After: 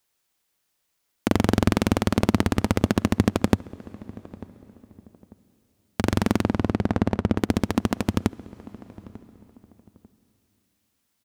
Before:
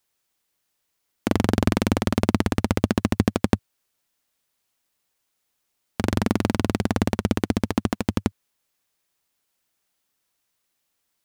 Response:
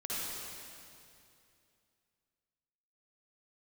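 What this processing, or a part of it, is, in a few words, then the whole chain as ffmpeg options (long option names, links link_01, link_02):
compressed reverb return: -filter_complex "[0:a]asettb=1/sr,asplit=3[link_01][link_02][link_03];[link_01]atrim=end=6.434[link_04];[link_02]atrim=start=6.43:end=7.38,asetpts=PTS-STARTPTS,afade=type=in:duration=0.004:curve=qsin,afade=type=out:start_time=0.946:duration=0.004:curve=qsin,lowpass=frequency=1500:poles=1[link_05];[link_03]atrim=start=7.376[link_06];[link_04][link_05]acrossfade=duration=0.004:curve1=hsin:curve2=qsin[link_07];[link_07][link_06]acrossfade=duration=0.004:curve1=qsin:curve2=hsin,asplit=2[link_08][link_09];[link_09]adelay=894,lowpass=frequency=1000:poles=1,volume=-19dB,asplit=2[link_10][link_11];[link_11]adelay=894,lowpass=frequency=1000:poles=1,volume=0.29[link_12];[link_08][link_10][link_12]amix=inputs=3:normalize=0,asplit=2[link_13][link_14];[1:a]atrim=start_sample=2205[link_15];[link_14][link_15]afir=irnorm=-1:irlink=0,acompressor=threshold=-32dB:ratio=4,volume=-14dB[link_16];[link_13][link_16]amix=inputs=2:normalize=0"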